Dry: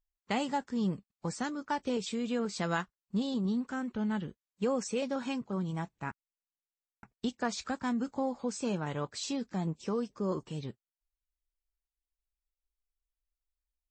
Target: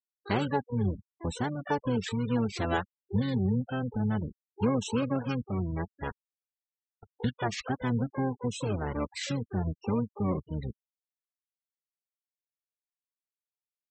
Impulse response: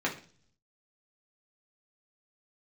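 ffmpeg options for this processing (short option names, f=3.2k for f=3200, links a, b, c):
-filter_complex "[0:a]asplit=4[a][b][c][d];[b]asetrate=22050,aresample=44100,atempo=2,volume=0dB[e];[c]asetrate=29433,aresample=44100,atempo=1.49831,volume=-18dB[f];[d]asetrate=88200,aresample=44100,atempo=0.5,volume=-10dB[g];[a][e][f][g]amix=inputs=4:normalize=0,afftfilt=real='re*gte(hypot(re,im),0.0141)':imag='im*gte(hypot(re,im),0.0141)':win_size=1024:overlap=0.75"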